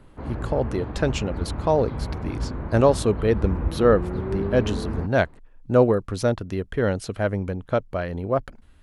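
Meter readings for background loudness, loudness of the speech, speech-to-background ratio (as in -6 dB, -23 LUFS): -30.5 LUFS, -24.0 LUFS, 6.5 dB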